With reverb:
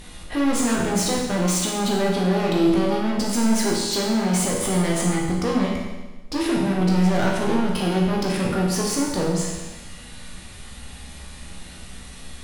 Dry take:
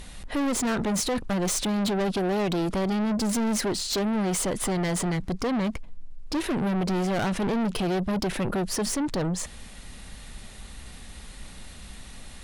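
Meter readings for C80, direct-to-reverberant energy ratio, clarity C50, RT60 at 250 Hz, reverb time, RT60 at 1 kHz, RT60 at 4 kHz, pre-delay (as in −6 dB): 4.0 dB, −3.0 dB, 2.0 dB, 1.2 s, 1.2 s, 1.2 s, 1.2 s, 12 ms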